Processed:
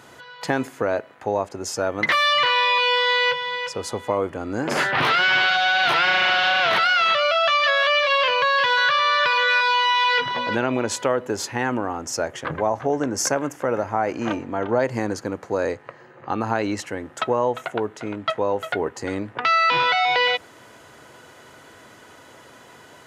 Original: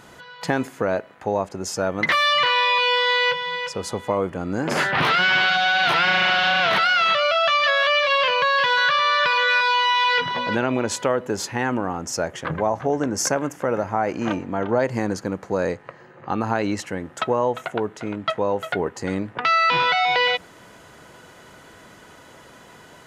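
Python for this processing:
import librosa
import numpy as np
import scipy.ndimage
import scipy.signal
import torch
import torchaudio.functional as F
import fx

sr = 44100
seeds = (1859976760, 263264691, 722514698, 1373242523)

y = scipy.signal.sosfilt(scipy.signal.butter(2, 81.0, 'highpass', fs=sr, output='sos'), x)
y = fx.peak_eq(y, sr, hz=180.0, db=-13.5, octaves=0.22)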